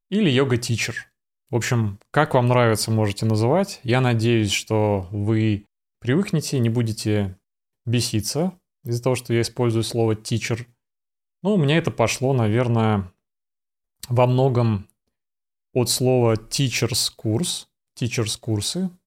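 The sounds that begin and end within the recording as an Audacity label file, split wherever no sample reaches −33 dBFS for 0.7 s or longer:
11.440000	13.060000	sound
14.030000	14.820000	sound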